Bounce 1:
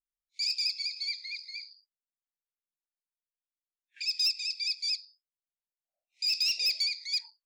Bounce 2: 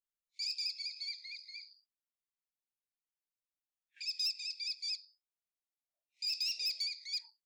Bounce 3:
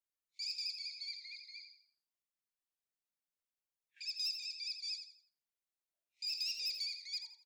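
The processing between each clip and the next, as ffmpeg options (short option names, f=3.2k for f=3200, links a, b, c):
-filter_complex "[0:a]acrossover=split=300|3000[a][b][c];[b]acompressor=threshold=-43dB:ratio=6[d];[a][d][c]amix=inputs=3:normalize=0,volume=-7dB"
-af "aecho=1:1:84|168|252|336:0.376|0.124|0.0409|0.0135,volume=-3.5dB"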